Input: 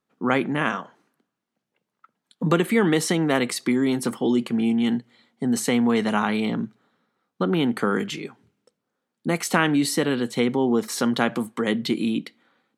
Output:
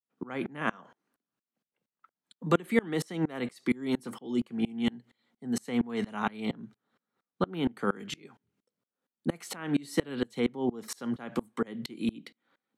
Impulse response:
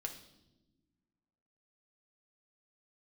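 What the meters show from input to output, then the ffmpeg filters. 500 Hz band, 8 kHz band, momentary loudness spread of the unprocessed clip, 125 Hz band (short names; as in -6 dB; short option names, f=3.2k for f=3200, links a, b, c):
-9.0 dB, -14.0 dB, 9 LU, -9.0 dB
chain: -filter_complex "[0:a]acrossover=split=130|1300|1800[a][b][c][d];[d]alimiter=limit=-23dB:level=0:latency=1:release=38[e];[a][b][c][e]amix=inputs=4:normalize=0,aeval=exprs='val(0)*pow(10,-28*if(lt(mod(-4.3*n/s,1),2*abs(-4.3)/1000),1-mod(-4.3*n/s,1)/(2*abs(-4.3)/1000),(mod(-4.3*n/s,1)-2*abs(-4.3)/1000)/(1-2*abs(-4.3)/1000))/20)':c=same,volume=-1.5dB"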